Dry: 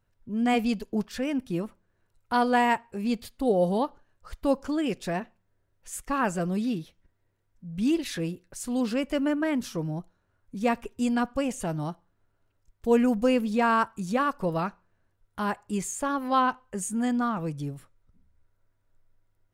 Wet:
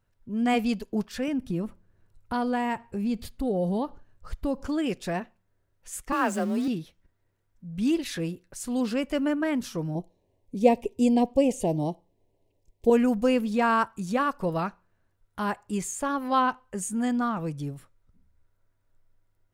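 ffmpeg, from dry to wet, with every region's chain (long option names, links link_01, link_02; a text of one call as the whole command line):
ffmpeg -i in.wav -filter_complex "[0:a]asettb=1/sr,asplit=3[link_01][link_02][link_03];[link_01]atrim=end=1.284[link_04];[link_02]atrim=start=1.28:end=4.67,asetpts=PTS-STARTPTS,afade=type=in:duration=0.004:curve=qsin,afade=type=out:start_time=3.386:duration=0.004:curve=qsin,lowshelf=frequency=290:gain=10.5,acompressor=threshold=-29dB:ratio=2:attack=3.2:release=140:knee=1:detection=peak[link_05];[link_03]atrim=start=4.666[link_06];[link_04][link_05]acrossfade=duration=0.004:curve1=hsin:curve2=qsin[link_07];[link_07][link_06]acrossfade=duration=0.004:curve1=qsin:curve2=hsin,asettb=1/sr,asplit=3[link_08][link_09][link_10];[link_08]atrim=end=6.124[link_11];[link_09]atrim=start=6.12:end=6.68,asetpts=PTS-STARTPTS,afade=type=in:duration=0.004:curve=qsin,afade=type=out:start_time=0.556:duration=0.004:curve=qsin,aeval=exprs='val(0)+0.5*0.0133*sgn(val(0))':channel_layout=same,highpass=57,afreqshift=32[link_12];[link_10]atrim=start=6.676[link_13];[link_11][link_12]acrossfade=duration=0.004:curve1=hsin:curve2=qsin[link_14];[link_14][link_13]acrossfade=duration=0.004:curve1=qsin:curve2=hsin,asettb=1/sr,asplit=3[link_15][link_16][link_17];[link_15]atrim=end=9.954[link_18];[link_16]atrim=start=9.95:end=12.9,asetpts=PTS-STARTPTS,afade=type=in:duration=0.004:curve=qsin,afade=type=out:start_time=2.946:duration=0.004:curve=qsin,asuperstop=centerf=1400:order=4:qfactor=1.1,equalizer=frequency=440:width_type=o:width=1.6:gain=9[link_19];[link_17]atrim=start=12.896[link_20];[link_18][link_19]acrossfade=duration=0.004:curve1=hsin:curve2=qsin[link_21];[link_21][link_20]acrossfade=duration=0.004:curve1=qsin:curve2=hsin" out.wav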